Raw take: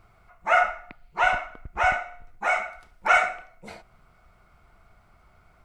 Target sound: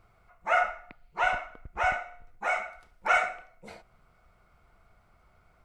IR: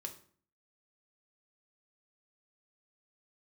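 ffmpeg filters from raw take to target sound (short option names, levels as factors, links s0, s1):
-af "equalizer=f=500:t=o:w=0.33:g=4,volume=0.562"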